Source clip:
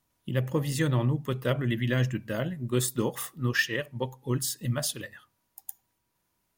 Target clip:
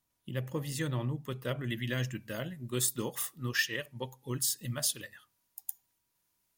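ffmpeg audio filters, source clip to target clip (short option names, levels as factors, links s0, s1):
-af "asetnsamples=n=441:p=0,asendcmd='1.64 highshelf g 9.5',highshelf=f=2400:g=4.5,volume=0.398"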